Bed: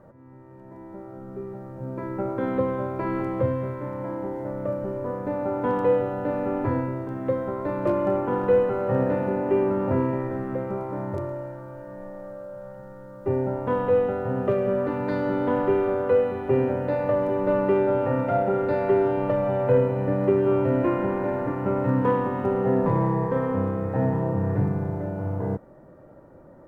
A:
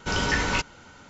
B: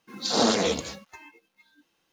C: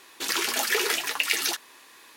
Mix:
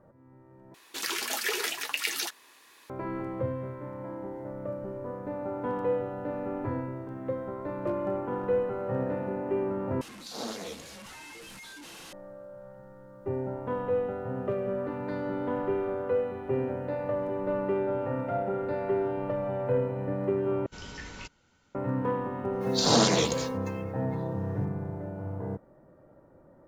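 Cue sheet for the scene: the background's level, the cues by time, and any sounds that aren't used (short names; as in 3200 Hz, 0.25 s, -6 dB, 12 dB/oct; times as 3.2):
bed -7.5 dB
0.74 replace with C -5.5 dB
10.01 replace with B -15 dB + delta modulation 64 kbps, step -25 dBFS
20.66 replace with A -16 dB + bell 970 Hz -4.5 dB 2.2 oct
22.53 add B -1 dB + high shelf 7200 Hz +6 dB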